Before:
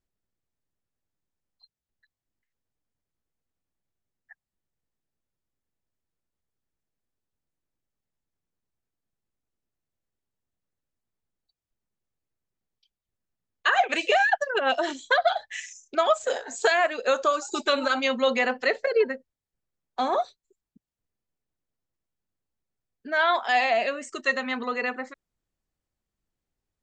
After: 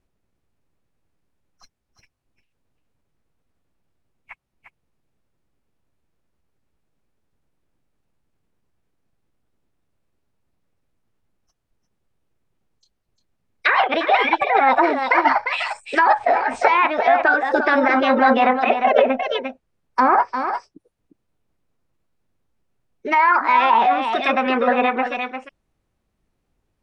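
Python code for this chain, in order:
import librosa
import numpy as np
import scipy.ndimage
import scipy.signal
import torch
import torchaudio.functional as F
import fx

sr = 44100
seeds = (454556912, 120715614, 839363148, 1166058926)

p1 = fx.over_compress(x, sr, threshold_db=-26.0, ratio=-1.0)
p2 = x + (p1 * librosa.db_to_amplitude(-2.5))
p3 = p2 + 10.0 ** (-8.5 / 20.0) * np.pad(p2, (int(351 * sr / 1000.0), 0))[:len(p2)]
p4 = fx.formant_shift(p3, sr, semitones=5)
p5 = fx.env_lowpass_down(p4, sr, base_hz=1900.0, full_db=-19.0)
p6 = fx.high_shelf(p5, sr, hz=3700.0, db=-10.0)
y = p6 * librosa.db_to_amplitude(6.5)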